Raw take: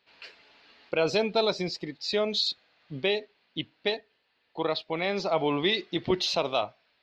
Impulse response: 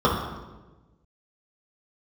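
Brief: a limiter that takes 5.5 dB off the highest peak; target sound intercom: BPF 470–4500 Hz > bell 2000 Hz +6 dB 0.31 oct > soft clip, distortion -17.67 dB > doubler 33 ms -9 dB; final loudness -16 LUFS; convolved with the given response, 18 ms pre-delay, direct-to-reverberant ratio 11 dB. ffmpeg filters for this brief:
-filter_complex "[0:a]alimiter=limit=-18dB:level=0:latency=1,asplit=2[a][b];[1:a]atrim=start_sample=2205,adelay=18[c];[b][c]afir=irnorm=-1:irlink=0,volume=-31dB[d];[a][d]amix=inputs=2:normalize=0,highpass=470,lowpass=4.5k,equalizer=f=2k:t=o:w=0.31:g=6,asoftclip=threshold=-22.5dB,asplit=2[e][f];[f]adelay=33,volume=-9dB[g];[e][g]amix=inputs=2:normalize=0,volume=17dB"

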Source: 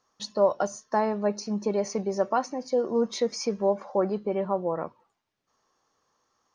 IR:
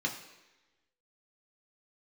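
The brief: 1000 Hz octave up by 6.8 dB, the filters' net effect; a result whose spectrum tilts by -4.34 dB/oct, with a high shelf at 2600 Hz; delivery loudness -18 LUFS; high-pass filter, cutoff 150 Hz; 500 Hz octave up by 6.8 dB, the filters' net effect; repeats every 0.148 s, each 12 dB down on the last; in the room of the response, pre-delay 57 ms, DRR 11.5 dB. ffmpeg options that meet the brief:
-filter_complex "[0:a]highpass=150,equalizer=f=500:t=o:g=6.5,equalizer=f=1k:t=o:g=5.5,highshelf=f=2.6k:g=5,aecho=1:1:148|296|444:0.251|0.0628|0.0157,asplit=2[a][b];[1:a]atrim=start_sample=2205,adelay=57[c];[b][c]afir=irnorm=-1:irlink=0,volume=-17dB[d];[a][d]amix=inputs=2:normalize=0,volume=3dB"

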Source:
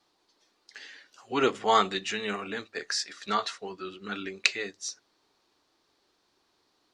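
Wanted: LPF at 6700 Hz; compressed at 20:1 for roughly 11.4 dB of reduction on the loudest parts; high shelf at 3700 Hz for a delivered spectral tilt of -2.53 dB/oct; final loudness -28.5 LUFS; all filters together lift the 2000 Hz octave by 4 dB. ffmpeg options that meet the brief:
-af "lowpass=6.7k,equalizer=f=2k:t=o:g=6.5,highshelf=f=3.7k:g=-4,acompressor=threshold=-30dB:ratio=20,volume=8.5dB"

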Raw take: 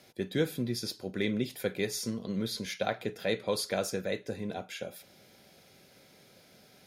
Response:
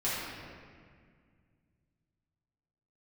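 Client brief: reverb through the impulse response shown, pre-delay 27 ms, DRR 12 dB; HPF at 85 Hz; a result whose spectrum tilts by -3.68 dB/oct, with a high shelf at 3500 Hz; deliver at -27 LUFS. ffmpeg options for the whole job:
-filter_complex "[0:a]highpass=85,highshelf=f=3.5k:g=8.5,asplit=2[a][b];[1:a]atrim=start_sample=2205,adelay=27[c];[b][c]afir=irnorm=-1:irlink=0,volume=-20.5dB[d];[a][d]amix=inputs=2:normalize=0,volume=4.5dB"

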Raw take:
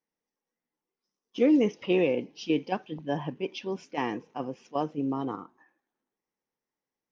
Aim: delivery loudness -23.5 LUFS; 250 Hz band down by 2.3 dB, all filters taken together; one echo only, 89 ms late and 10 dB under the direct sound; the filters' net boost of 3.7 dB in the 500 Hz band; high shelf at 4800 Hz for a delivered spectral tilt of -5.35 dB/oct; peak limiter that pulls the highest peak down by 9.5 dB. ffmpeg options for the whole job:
-af "equalizer=f=250:t=o:g=-5.5,equalizer=f=500:t=o:g=6,highshelf=f=4.8k:g=-8,alimiter=limit=-20dB:level=0:latency=1,aecho=1:1:89:0.316,volume=8.5dB"

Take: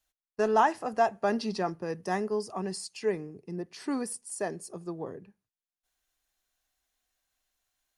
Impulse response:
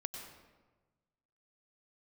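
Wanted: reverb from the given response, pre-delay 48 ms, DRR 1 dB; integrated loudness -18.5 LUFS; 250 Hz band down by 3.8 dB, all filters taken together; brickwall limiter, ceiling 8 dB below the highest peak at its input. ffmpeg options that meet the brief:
-filter_complex "[0:a]equalizer=f=250:t=o:g=-5,alimiter=limit=-21.5dB:level=0:latency=1,asplit=2[a][b];[1:a]atrim=start_sample=2205,adelay=48[c];[b][c]afir=irnorm=-1:irlink=0,volume=0dB[d];[a][d]amix=inputs=2:normalize=0,volume=14dB"

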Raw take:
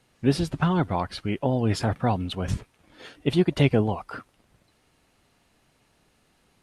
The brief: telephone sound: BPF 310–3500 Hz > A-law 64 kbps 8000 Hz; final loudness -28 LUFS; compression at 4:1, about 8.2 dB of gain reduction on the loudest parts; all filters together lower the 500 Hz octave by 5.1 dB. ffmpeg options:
-af "equalizer=f=500:t=o:g=-5.5,acompressor=threshold=-26dB:ratio=4,highpass=310,lowpass=3.5k,volume=9dB" -ar 8000 -c:a pcm_alaw

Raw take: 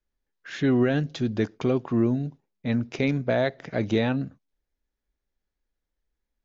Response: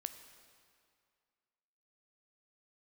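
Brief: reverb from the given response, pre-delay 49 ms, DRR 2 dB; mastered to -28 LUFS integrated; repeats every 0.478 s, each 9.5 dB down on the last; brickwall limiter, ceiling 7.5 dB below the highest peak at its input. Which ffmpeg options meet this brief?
-filter_complex "[0:a]alimiter=limit=-18.5dB:level=0:latency=1,aecho=1:1:478|956|1434|1912:0.335|0.111|0.0365|0.012,asplit=2[a][b];[1:a]atrim=start_sample=2205,adelay=49[c];[b][c]afir=irnorm=-1:irlink=0,volume=0.5dB[d];[a][d]amix=inputs=2:normalize=0,volume=-0.5dB"

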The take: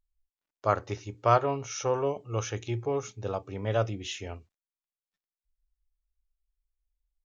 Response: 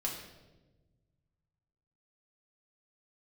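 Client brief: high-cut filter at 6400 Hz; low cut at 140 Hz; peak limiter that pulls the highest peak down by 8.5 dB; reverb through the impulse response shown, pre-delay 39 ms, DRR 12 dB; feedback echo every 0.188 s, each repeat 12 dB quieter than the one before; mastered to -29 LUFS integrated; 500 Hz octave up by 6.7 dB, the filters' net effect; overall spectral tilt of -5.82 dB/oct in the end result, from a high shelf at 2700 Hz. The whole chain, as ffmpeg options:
-filter_complex "[0:a]highpass=140,lowpass=6.4k,equalizer=f=500:t=o:g=8.5,highshelf=f=2.7k:g=-6.5,alimiter=limit=-16dB:level=0:latency=1,aecho=1:1:188|376|564:0.251|0.0628|0.0157,asplit=2[a][b];[1:a]atrim=start_sample=2205,adelay=39[c];[b][c]afir=irnorm=-1:irlink=0,volume=-14.5dB[d];[a][d]amix=inputs=2:normalize=0,volume=-0.5dB"

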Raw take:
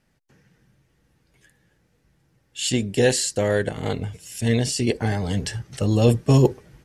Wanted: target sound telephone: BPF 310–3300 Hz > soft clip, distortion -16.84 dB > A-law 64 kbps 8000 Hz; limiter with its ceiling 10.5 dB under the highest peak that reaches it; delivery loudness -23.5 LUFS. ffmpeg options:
-af "alimiter=limit=-14.5dB:level=0:latency=1,highpass=310,lowpass=3.3k,asoftclip=threshold=-21dB,volume=9dB" -ar 8000 -c:a pcm_alaw

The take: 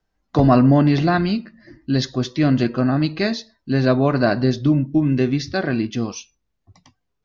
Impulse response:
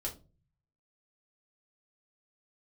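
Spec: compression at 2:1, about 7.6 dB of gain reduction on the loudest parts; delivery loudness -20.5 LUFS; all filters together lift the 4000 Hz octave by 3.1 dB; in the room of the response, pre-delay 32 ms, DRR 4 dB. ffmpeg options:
-filter_complex "[0:a]equalizer=f=4k:t=o:g=3.5,acompressor=threshold=-24dB:ratio=2,asplit=2[a][b];[1:a]atrim=start_sample=2205,adelay=32[c];[b][c]afir=irnorm=-1:irlink=0,volume=-4.5dB[d];[a][d]amix=inputs=2:normalize=0,volume=3dB"

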